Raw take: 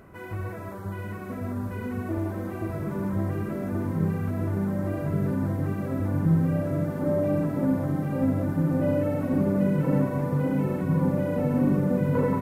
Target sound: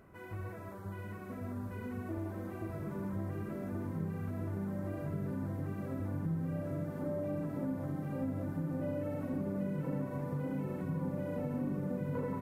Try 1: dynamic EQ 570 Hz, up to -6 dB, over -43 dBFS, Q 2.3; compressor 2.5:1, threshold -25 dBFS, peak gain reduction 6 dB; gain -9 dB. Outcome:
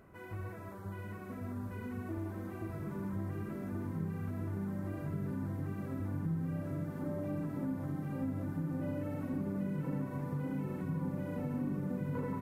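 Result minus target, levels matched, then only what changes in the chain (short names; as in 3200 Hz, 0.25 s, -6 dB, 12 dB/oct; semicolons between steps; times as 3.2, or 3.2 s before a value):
500 Hz band -3.0 dB
remove: dynamic EQ 570 Hz, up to -6 dB, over -43 dBFS, Q 2.3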